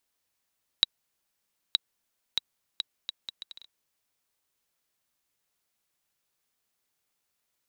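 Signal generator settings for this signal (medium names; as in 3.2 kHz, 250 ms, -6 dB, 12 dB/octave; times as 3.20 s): bouncing ball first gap 0.92 s, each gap 0.68, 3.87 kHz, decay 19 ms -5 dBFS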